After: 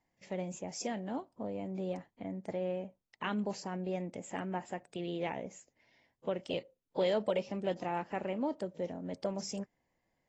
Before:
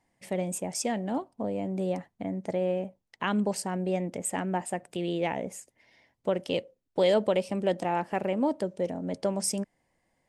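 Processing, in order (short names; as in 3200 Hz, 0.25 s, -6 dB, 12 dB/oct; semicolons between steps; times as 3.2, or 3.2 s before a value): gain -7.5 dB; AAC 24 kbps 24000 Hz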